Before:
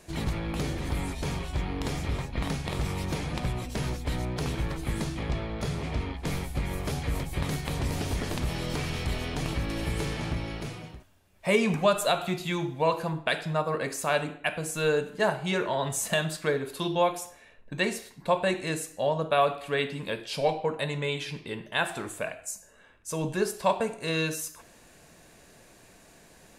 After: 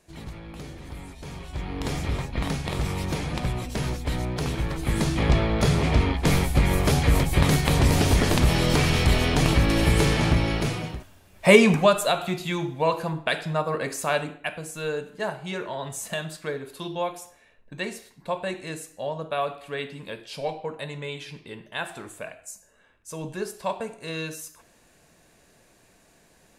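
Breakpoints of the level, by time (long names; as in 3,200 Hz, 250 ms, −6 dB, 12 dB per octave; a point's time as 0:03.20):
0:01.19 −8.5 dB
0:01.91 +3 dB
0:04.70 +3 dB
0:05.27 +10.5 dB
0:11.48 +10.5 dB
0:12.05 +2 dB
0:14.09 +2 dB
0:14.72 −4 dB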